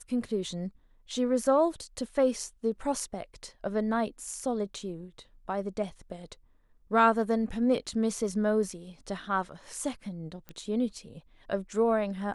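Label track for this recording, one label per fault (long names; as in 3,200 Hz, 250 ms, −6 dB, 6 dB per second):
10.490000	10.490000	click −26 dBFS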